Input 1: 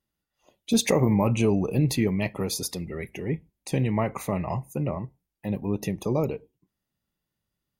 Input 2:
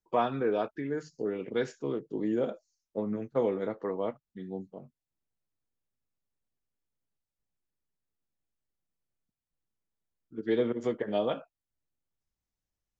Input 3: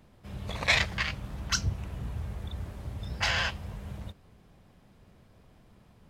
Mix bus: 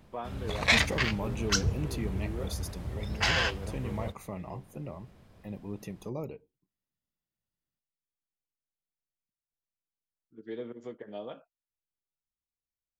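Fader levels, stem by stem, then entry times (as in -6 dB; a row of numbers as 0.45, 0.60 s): -12.0, -11.5, +1.0 dB; 0.00, 0.00, 0.00 s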